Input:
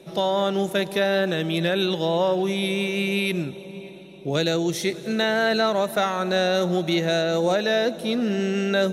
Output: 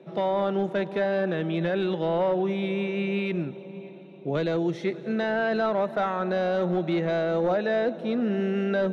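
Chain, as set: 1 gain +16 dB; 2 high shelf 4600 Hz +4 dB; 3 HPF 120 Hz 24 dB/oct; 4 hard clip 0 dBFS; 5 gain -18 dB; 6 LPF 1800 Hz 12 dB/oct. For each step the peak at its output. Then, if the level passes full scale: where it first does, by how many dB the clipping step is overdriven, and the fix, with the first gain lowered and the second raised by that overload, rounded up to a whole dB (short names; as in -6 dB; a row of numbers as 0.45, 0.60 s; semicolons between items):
+5.5, +6.0, +8.0, 0.0, -18.0, -17.5 dBFS; step 1, 8.0 dB; step 1 +8 dB, step 5 -10 dB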